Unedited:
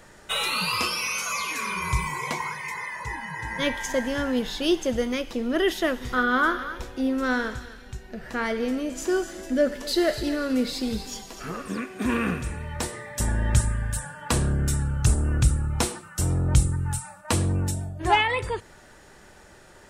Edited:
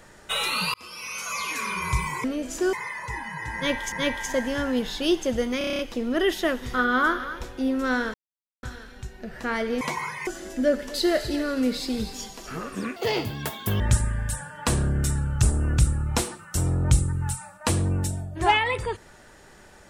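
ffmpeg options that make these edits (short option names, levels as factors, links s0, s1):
-filter_complex "[0:a]asplit=17[s0][s1][s2][s3][s4][s5][s6][s7][s8][s9][s10][s11][s12][s13][s14][s15][s16];[s0]atrim=end=0.74,asetpts=PTS-STARTPTS,afade=t=out:st=0.736:d=0.004:c=hsin[s17];[s1]atrim=start=0.74:end=2.242,asetpts=PTS-STARTPTS,afade=t=in:d=0.75[s18];[s2]atrim=start=8.708:end=9.202[s19];[s3]atrim=start=2.698:end=3.892[s20];[s4]atrim=start=3.518:end=5.212[s21];[s5]atrim=start=5.178:end=5.212[s22];[s6]atrim=start=5.178:end=5.212[s23];[s7]atrim=start=5.178:end=5.212[s24];[s8]atrim=start=5.178:end=5.212[s25];[s9]atrim=start=5.178:end=5.212[s26];[s10]atrim=start=5.178:end=5.212[s27];[s11]atrim=start=5.178:end=7.53,asetpts=PTS-STARTPTS,afade=t=out:st=2.348:d=0.004:c=hsin,apad=pad_dur=0.49[s28];[s12]atrim=start=7.53:end=8.712,asetpts=PTS-STARTPTS,afade=t=in:d=0.004:c=hsin[s29];[s13]atrim=start=2.238:end=2.702[s30];[s14]atrim=start=9.198:end=11.894[s31];[s15]atrim=start=11.89:end=13.44,asetpts=PTS-STARTPTS,asetrate=81144,aresample=44100,atrim=end_sample=37149,asetpts=PTS-STARTPTS[s32];[s16]atrim=start=13.436[s33];[s17][s18]concat=n=2:v=0:a=1[s34];[s34][s19]acrossfade=d=0.004:c1=hsin:c2=hsin[s35];[s35][s20]acrossfade=d=0.004:c1=hsin:c2=hsin[s36];[s36][s21]acrossfade=d=0.004:c1=hsin:c2=hsin[s37];[s37][s22]acrossfade=d=0.004:c1=hsin:c2=hsin[s38];[s38][s23]acrossfade=d=0.004:c1=hsin:c2=hsin[s39];[s39][s24]acrossfade=d=0.004:c1=hsin:c2=hsin[s40];[s40][s25]acrossfade=d=0.004:c1=hsin:c2=hsin[s41];[s41][s26]acrossfade=d=0.004:c1=hsin:c2=hsin[s42];[s42][s27]acrossfade=d=0.004:c1=hsin:c2=hsin[s43];[s28][s29]concat=n=2:v=0:a=1[s44];[s43][s44]acrossfade=d=0.004:c1=hsin:c2=hsin[s45];[s45][s30]acrossfade=d=0.004:c1=hsin:c2=hsin[s46];[s46][s31]acrossfade=d=0.004:c1=hsin:c2=hsin[s47];[s47][s32]acrossfade=d=0.004:c1=hsin:c2=hsin[s48];[s48][s33]acrossfade=d=0.004:c1=hsin:c2=hsin"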